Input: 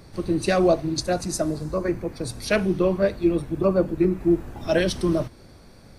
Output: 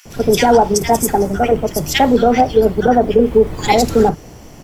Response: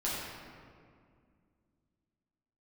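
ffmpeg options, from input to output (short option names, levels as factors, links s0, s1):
-filter_complex "[0:a]acrossover=split=1200[s0][s1];[s0]adelay=70[s2];[s2][s1]amix=inputs=2:normalize=0,asetrate=56889,aresample=44100,alimiter=level_in=3.98:limit=0.891:release=50:level=0:latency=1,volume=0.891"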